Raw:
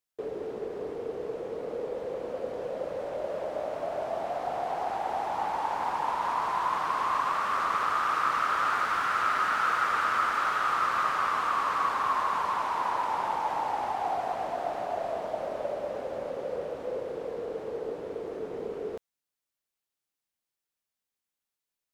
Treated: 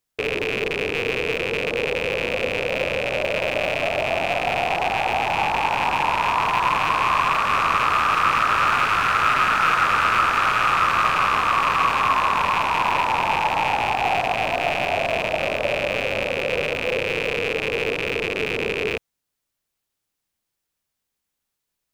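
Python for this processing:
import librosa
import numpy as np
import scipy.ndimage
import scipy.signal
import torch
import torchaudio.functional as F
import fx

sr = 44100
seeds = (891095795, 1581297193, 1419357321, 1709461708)

y = fx.rattle_buzz(x, sr, strikes_db=-50.0, level_db=-20.0)
y = fx.low_shelf(y, sr, hz=190.0, db=8.5)
y = y * librosa.db_to_amplitude(7.5)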